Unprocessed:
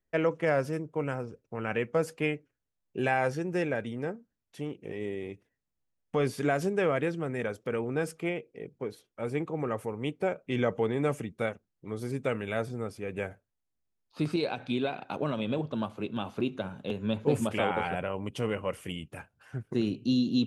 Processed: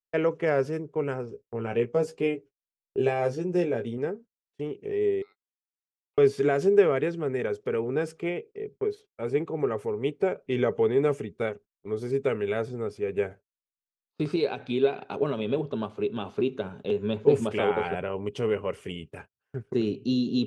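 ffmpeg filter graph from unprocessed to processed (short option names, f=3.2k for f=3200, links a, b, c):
-filter_complex "[0:a]asettb=1/sr,asplit=3[a][b][c];[a]atrim=end=1.304[d];[b]atrim=start=1.3:end=3.98,asetpts=PTS-STARTPTS,afade=t=in:d=0.004:c=qsin,afade=t=out:st=2.676:d=0.004:c=qsin,equalizer=f=1.7k:t=o:w=1.2:g=-8,asplit=2[e][f];[f]adelay=17,volume=-5dB[g];[e][g]amix=inputs=2:normalize=0,atrim=end_sample=118188[h];[c]atrim=start=3.976[i];[d][h]acrossfade=d=0.004:c1=hsin:c2=qsin[j];[j][i]acrossfade=d=0.004:c1=qsin:c2=hsin,asettb=1/sr,asplit=3[k][l][m];[k]atrim=end=5.224[n];[l]atrim=start=5.22:end=6.18,asetpts=PTS-STARTPTS,afade=t=in:d=0.004:c=qsin,afade=t=out:st=0.956:d=0.004:c=qsin,acompressor=threshold=-47dB:ratio=4:attack=3.2:release=140:knee=1:detection=peak,highpass=700,lowpass=2.2k,aeval=exprs='val(0)*sin(2*PI*1700*n/s)':c=same[o];[m]atrim=start=6.176[p];[n][o]acrossfade=d=0.004:c1=hsin:c2=qsin[q];[q][p]acrossfade=d=0.004:c1=qsin:c2=hsin,lowpass=7.4k,equalizer=f=410:t=o:w=0.22:g=13.5,agate=range=-28dB:threshold=-45dB:ratio=16:detection=peak"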